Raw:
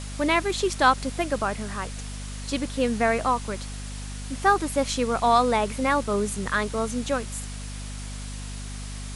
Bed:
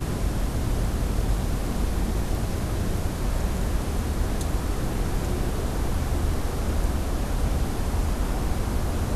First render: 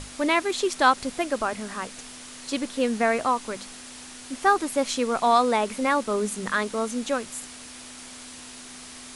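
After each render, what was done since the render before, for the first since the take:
mains-hum notches 50/100/150/200 Hz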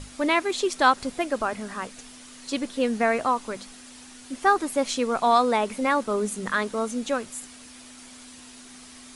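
broadband denoise 6 dB, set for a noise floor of −43 dBFS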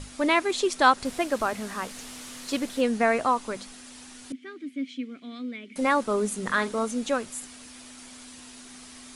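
0:01.05–0:02.81: linear delta modulator 64 kbit/s, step −35 dBFS
0:04.32–0:05.76: formant filter i
0:06.43–0:06.84: double-tracking delay 44 ms −11.5 dB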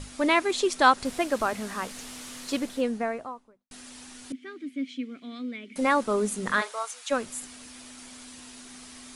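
0:02.39–0:03.71: fade out and dull
0:06.60–0:07.10: high-pass filter 510 Hz → 1,100 Hz 24 dB per octave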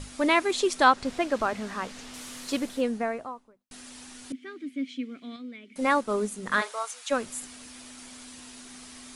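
0:00.84–0:02.14: high-frequency loss of the air 64 metres
0:05.36–0:06.52: expander for the loud parts, over −32 dBFS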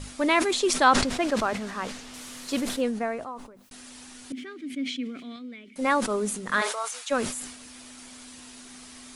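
level that may fall only so fast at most 65 dB per second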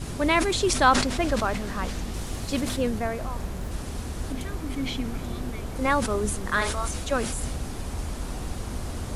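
mix in bed −7 dB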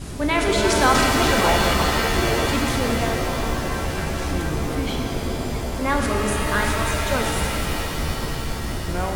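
delay with pitch and tempo change per echo 176 ms, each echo −7 semitones, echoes 3, each echo −6 dB
reverb with rising layers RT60 3.6 s, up +7 semitones, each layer −2 dB, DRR 1.5 dB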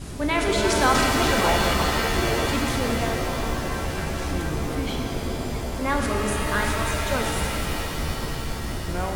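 level −2.5 dB

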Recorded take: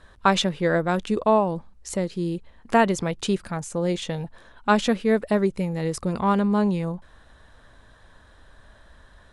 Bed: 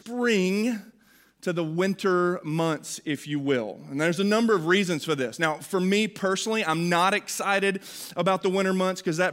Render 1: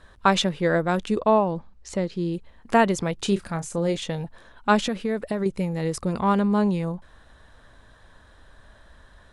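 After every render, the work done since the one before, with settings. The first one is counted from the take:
0:01.18–0:02.34: low-pass filter 5,900 Hz
0:03.16–0:03.97: double-tracking delay 30 ms −11.5 dB
0:04.79–0:05.46: downward compressor, threshold −21 dBFS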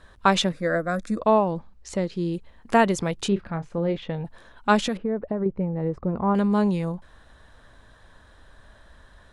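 0:00.52–0:01.20: phaser with its sweep stopped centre 600 Hz, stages 8
0:03.28–0:04.25: high-frequency loss of the air 350 metres
0:04.97–0:06.35: low-pass filter 1,000 Hz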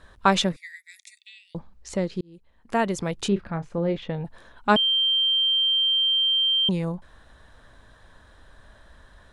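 0:00.56–0:01.55: Chebyshev high-pass filter 1,900 Hz, order 8
0:02.21–0:03.26: fade in
0:04.76–0:06.69: beep over 3,150 Hz −18.5 dBFS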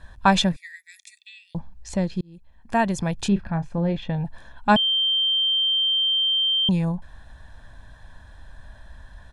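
low-shelf EQ 170 Hz +6 dB
comb filter 1.2 ms, depth 52%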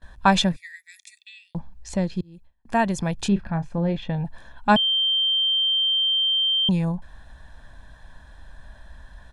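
noise gate with hold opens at −41 dBFS
parametric band 94 Hz −12 dB 0.23 octaves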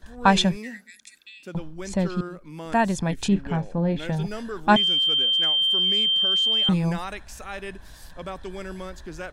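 mix in bed −12 dB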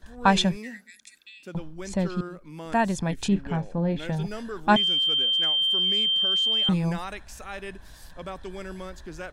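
level −2 dB

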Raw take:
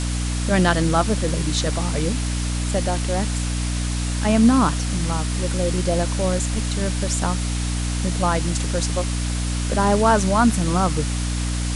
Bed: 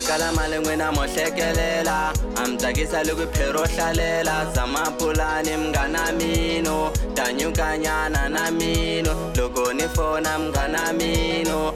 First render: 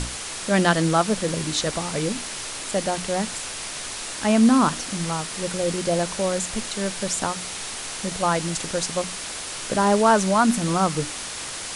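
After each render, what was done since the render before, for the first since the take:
mains-hum notches 60/120/180/240/300 Hz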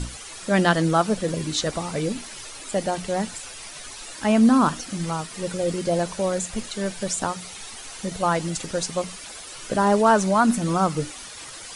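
broadband denoise 11 dB, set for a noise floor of −33 dBFS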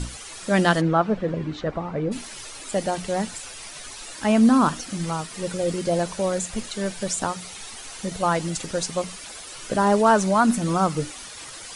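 0:00.80–0:02.11: low-pass filter 2,400 Hz → 1,400 Hz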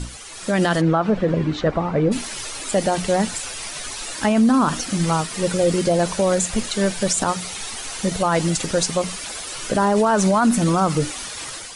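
brickwall limiter −17 dBFS, peak gain reduction 10.5 dB
automatic gain control gain up to 7.5 dB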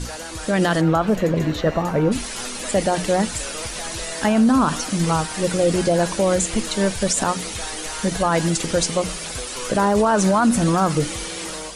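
mix in bed −12.5 dB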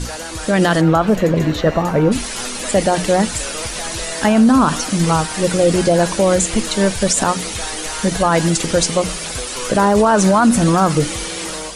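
level +4.5 dB

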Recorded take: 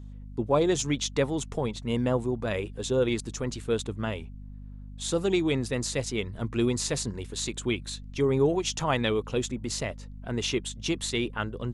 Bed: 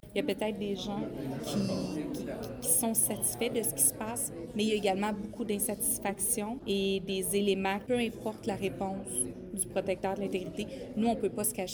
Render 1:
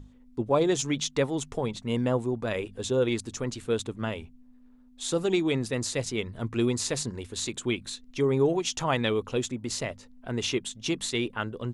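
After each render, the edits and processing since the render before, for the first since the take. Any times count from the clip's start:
mains-hum notches 50/100/150/200 Hz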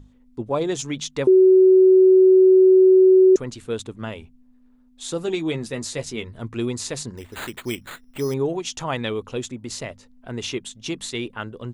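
0:01.27–0:03.36: beep over 375 Hz −9 dBFS
0:05.26–0:06.33: double-tracking delay 13 ms −7.5 dB
0:07.17–0:08.34: bad sample-rate conversion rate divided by 8×, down none, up hold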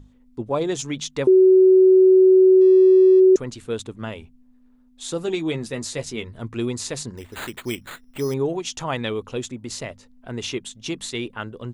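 0:02.61–0:03.20: running median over 15 samples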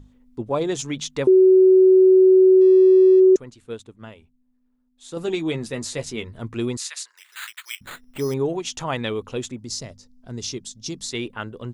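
0:03.16–0:05.17: expander for the loud parts, over −36 dBFS
0:06.77–0:07.81: high-pass filter 1,300 Hz 24 dB per octave
0:09.59–0:11.11: drawn EQ curve 170 Hz 0 dB, 380 Hz −5 dB, 730 Hz −8 dB, 2,800 Hz −11 dB, 5,200 Hz +7 dB, 8,900 Hz −2 dB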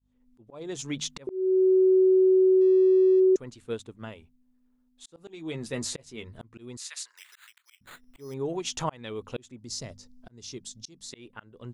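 volume swells 711 ms
downward compressor, threshold −18 dBFS, peak gain reduction 7 dB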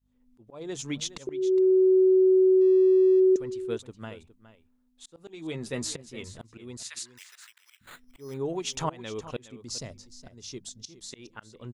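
single-tap delay 414 ms −15 dB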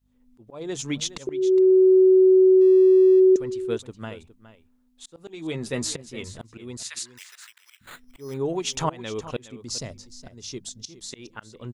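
level +4.5 dB

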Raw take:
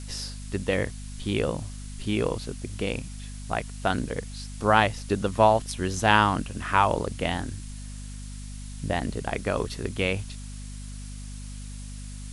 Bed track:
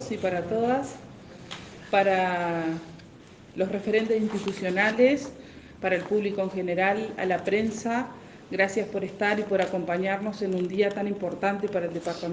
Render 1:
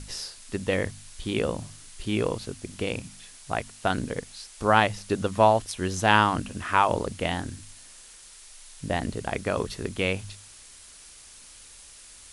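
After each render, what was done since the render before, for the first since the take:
hum removal 50 Hz, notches 5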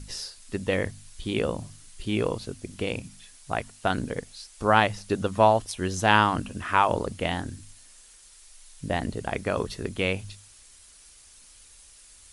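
broadband denoise 6 dB, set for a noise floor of −49 dBFS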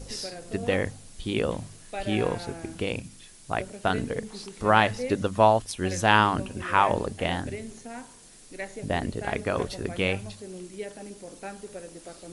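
mix in bed track −13 dB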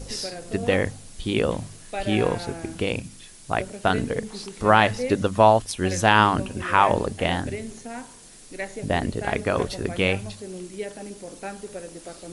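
level +4 dB
brickwall limiter −3 dBFS, peak gain reduction 3 dB

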